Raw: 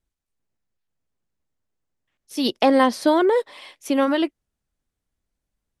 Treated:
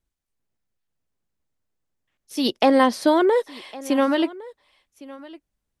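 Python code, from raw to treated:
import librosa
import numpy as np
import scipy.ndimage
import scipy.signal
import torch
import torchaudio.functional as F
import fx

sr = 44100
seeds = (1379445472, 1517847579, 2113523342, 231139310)

y = x + 10.0 ** (-20.0 / 20.0) * np.pad(x, (int(1109 * sr / 1000.0), 0))[:len(x)]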